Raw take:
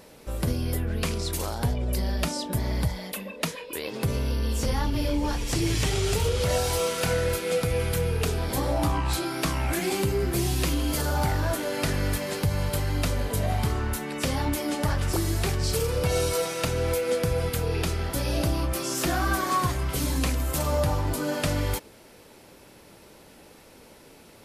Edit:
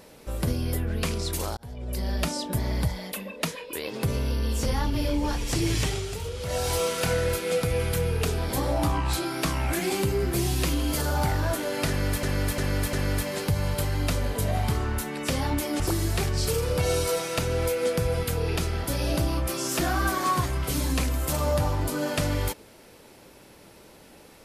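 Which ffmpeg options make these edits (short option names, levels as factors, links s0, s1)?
-filter_complex "[0:a]asplit=8[s0][s1][s2][s3][s4][s5][s6][s7];[s0]atrim=end=1.57,asetpts=PTS-STARTPTS,afade=t=out:st=1.566:d=0.004:c=hsin[s8];[s1]atrim=start=1.57:end=6.08,asetpts=PTS-STARTPTS,afade=t=in:d=0.58,afade=t=out:st=4.23:d=0.28:silence=0.375837[s9];[s2]atrim=start=6.08:end=6.43,asetpts=PTS-STARTPTS,volume=0.376[s10];[s3]atrim=start=6.43:end=12.232,asetpts=PTS-STARTPTS,afade=t=in:d=0.28:silence=0.375837[s11];[s4]atrim=start=11.878:end=12.232[s12];[s5]atrim=start=11.878:end=12.232[s13];[s6]atrim=start=11.878:end=14.752[s14];[s7]atrim=start=15.058[s15];[s8][s9][s10][s11]concat=n=4:v=0:a=1[s16];[s16][s12]acrossfade=d=0.004:c1=hsin:c2=hsin[s17];[s17][s13]acrossfade=d=0.004:c1=hsin:c2=hsin[s18];[s18][s14]acrossfade=d=0.004:c1=hsin:c2=hsin[s19];[s19][s15]acrossfade=d=0.004:c1=hsin:c2=hsin"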